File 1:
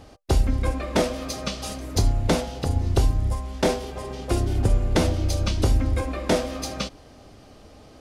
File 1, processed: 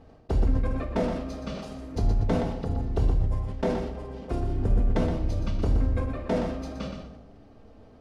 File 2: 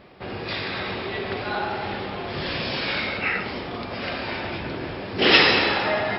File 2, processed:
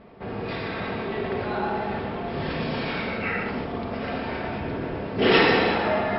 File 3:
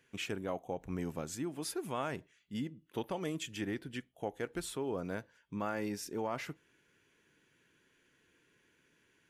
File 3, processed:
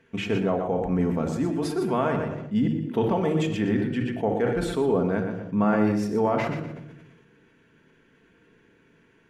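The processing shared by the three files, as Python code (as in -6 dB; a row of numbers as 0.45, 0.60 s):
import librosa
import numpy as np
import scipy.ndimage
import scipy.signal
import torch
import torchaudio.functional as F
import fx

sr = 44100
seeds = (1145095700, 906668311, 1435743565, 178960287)

p1 = fx.lowpass(x, sr, hz=1100.0, slope=6)
p2 = p1 + fx.echo_feedback(p1, sr, ms=121, feedback_pct=22, wet_db=-8.5, dry=0)
p3 = fx.room_shoebox(p2, sr, seeds[0], volume_m3=2100.0, walls='furnished', distance_m=1.6)
p4 = fx.sustainer(p3, sr, db_per_s=42.0)
y = p4 * 10.0 ** (-26 / 20.0) / np.sqrt(np.mean(np.square(p4)))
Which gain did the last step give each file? -6.0, +0.5, +12.0 dB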